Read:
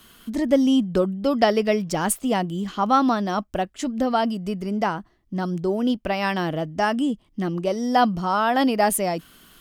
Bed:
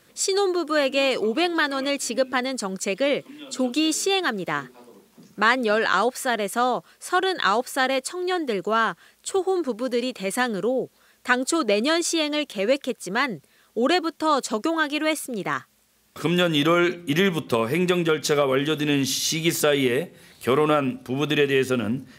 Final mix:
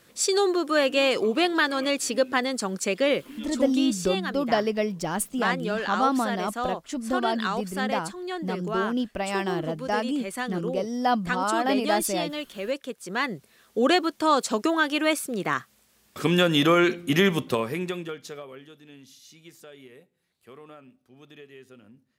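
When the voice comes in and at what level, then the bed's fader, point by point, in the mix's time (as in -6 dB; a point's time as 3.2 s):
3.10 s, -5.0 dB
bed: 3.4 s -0.5 dB
3.79 s -8 dB
12.85 s -8 dB
13.52 s 0 dB
17.39 s 0 dB
18.8 s -27 dB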